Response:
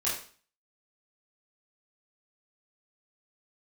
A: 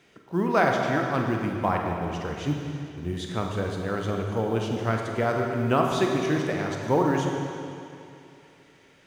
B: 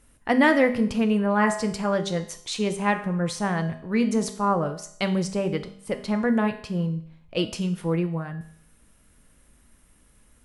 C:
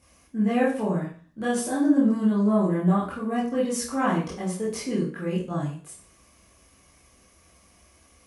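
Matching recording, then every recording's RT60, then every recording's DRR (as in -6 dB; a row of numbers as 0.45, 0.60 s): C; 2.7, 0.60, 0.45 s; 1.0, 7.0, -8.5 dB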